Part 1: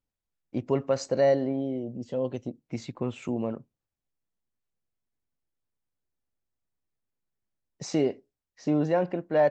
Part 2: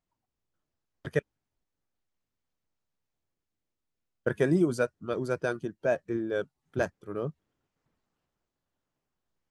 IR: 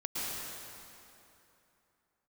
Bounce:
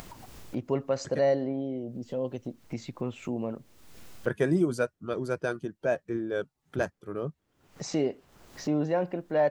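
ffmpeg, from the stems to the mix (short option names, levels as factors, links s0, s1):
-filter_complex "[0:a]volume=0.75,asplit=2[s0][s1];[1:a]acompressor=mode=upward:threshold=0.00794:ratio=2.5,volume=0.944[s2];[s1]apad=whole_len=419178[s3];[s2][s3]sidechaincompress=threshold=0.0141:ratio=3:attack=5.4:release=213[s4];[s0][s4]amix=inputs=2:normalize=0,acompressor=mode=upward:threshold=0.0251:ratio=2.5"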